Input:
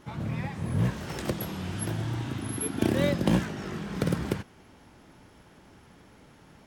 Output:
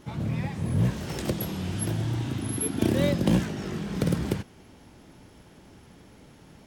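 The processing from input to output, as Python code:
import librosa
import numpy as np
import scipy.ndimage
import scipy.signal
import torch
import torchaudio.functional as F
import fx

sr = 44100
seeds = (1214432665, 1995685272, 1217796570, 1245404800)

p1 = fx.peak_eq(x, sr, hz=1300.0, db=-5.5, octaves=1.8)
p2 = 10.0 ** (-25.5 / 20.0) * np.tanh(p1 / 10.0 ** (-25.5 / 20.0))
y = p1 + F.gain(torch.from_numpy(p2), -5.0).numpy()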